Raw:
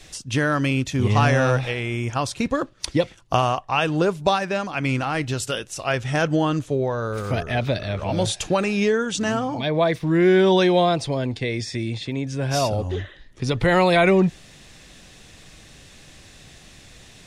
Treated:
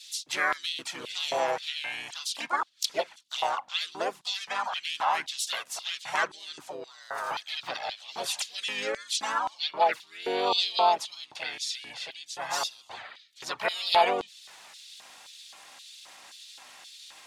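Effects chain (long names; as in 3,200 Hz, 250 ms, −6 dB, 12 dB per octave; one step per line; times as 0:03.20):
high-pass filter 48 Hz 24 dB per octave
in parallel at −2 dB: downward compressor 5 to 1, threshold −28 dBFS, peak gain reduction 14 dB
on the sum: flanger swept by the level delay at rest 4.2 ms, full sweep at −12 dBFS
mains hum 50 Hz, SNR 17 dB
pitch-shifted copies added −5 semitones −6 dB, +4 semitones −3 dB
auto-filter high-pass square 1.9 Hz 870–3,700 Hz
level −6.5 dB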